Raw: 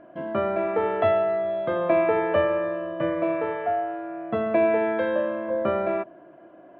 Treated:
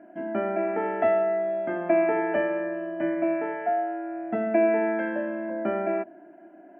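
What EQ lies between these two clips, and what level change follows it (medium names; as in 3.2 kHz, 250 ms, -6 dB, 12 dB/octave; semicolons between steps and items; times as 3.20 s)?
resonant low shelf 110 Hz -12.5 dB, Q 3; static phaser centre 750 Hz, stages 8; 0.0 dB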